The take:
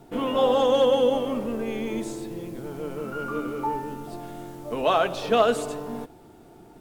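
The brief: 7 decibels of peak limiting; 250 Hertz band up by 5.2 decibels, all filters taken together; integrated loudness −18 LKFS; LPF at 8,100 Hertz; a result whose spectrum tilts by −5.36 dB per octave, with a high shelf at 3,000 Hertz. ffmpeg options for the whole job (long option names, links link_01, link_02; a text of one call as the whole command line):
ffmpeg -i in.wav -af "lowpass=8100,equalizer=frequency=250:width_type=o:gain=6,highshelf=frequency=3000:gain=-7.5,volume=8.5dB,alimiter=limit=-6dB:level=0:latency=1" out.wav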